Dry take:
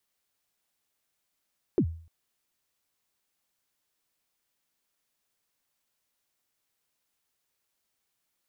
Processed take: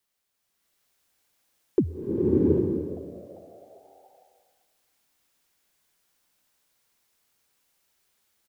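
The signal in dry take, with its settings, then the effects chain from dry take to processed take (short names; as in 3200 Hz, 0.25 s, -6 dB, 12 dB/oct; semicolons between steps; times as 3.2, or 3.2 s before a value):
kick drum length 0.30 s, from 430 Hz, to 82 Hz, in 74 ms, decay 0.47 s, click off, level -17 dB
dynamic EQ 430 Hz, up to +7 dB, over -41 dBFS, Q 1.2; frequency-shifting echo 0.396 s, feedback 52%, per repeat +100 Hz, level -20 dB; bloom reverb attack 0.74 s, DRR -7.5 dB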